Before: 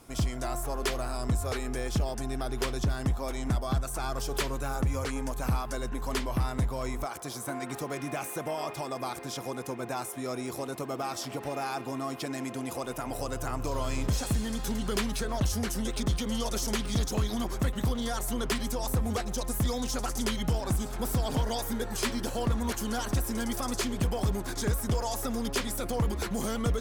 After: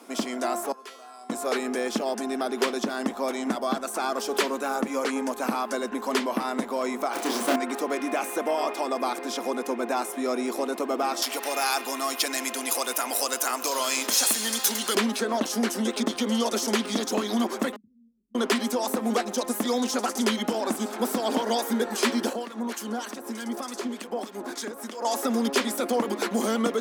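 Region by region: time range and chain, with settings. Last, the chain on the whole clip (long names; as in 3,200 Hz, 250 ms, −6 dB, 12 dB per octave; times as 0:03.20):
0:00.72–0:01.30: low-shelf EQ 490 Hz −9.5 dB + tuned comb filter 150 Hz, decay 0.79 s, harmonics odd, mix 90%
0:07.13–0:07.56: each half-wave held at its own peak + double-tracking delay 30 ms −4.5 dB
0:11.22–0:14.95: spectral tilt +4.5 dB per octave + notch filter 7,900 Hz, Q 16
0:17.76–0:18.35: inverse Chebyshev low-pass filter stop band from 710 Hz, stop band 80 dB + spectral tilt +3.5 dB per octave
0:22.33–0:25.05: downward compressor 4 to 1, threshold −31 dBFS + two-band tremolo in antiphase 3.3 Hz, crossover 1,300 Hz
whole clip: elliptic high-pass filter 220 Hz, stop band 40 dB; high-shelf EQ 6,300 Hz −6 dB; level +8 dB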